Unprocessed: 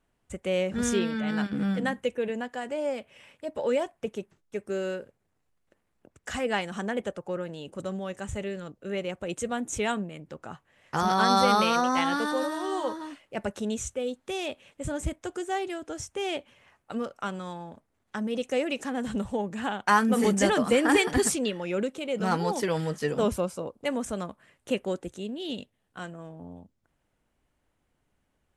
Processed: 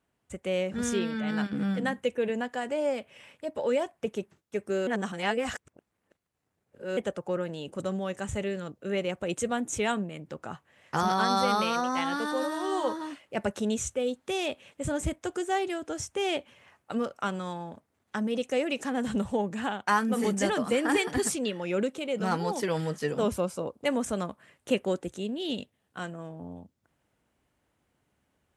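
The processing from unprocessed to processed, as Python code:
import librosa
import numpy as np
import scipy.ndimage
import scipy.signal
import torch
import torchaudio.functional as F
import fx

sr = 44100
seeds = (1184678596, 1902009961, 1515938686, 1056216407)

y = fx.edit(x, sr, fx.reverse_span(start_s=4.87, length_s=2.1), tone=tone)
y = scipy.signal.sosfilt(scipy.signal.butter(2, 67.0, 'highpass', fs=sr, output='sos'), y)
y = fx.rider(y, sr, range_db=3, speed_s=0.5)
y = F.gain(torch.from_numpy(y), -1.0).numpy()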